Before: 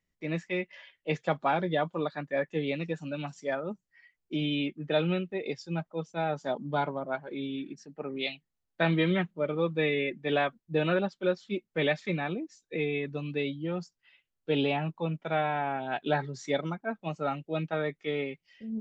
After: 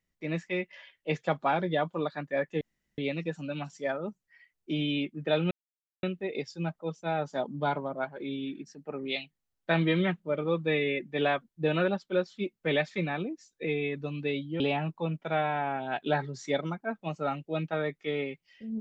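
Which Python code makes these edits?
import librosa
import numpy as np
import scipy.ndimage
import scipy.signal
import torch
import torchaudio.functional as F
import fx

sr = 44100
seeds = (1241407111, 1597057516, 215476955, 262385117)

y = fx.edit(x, sr, fx.insert_room_tone(at_s=2.61, length_s=0.37),
    fx.insert_silence(at_s=5.14, length_s=0.52),
    fx.cut(start_s=13.71, length_s=0.89), tone=tone)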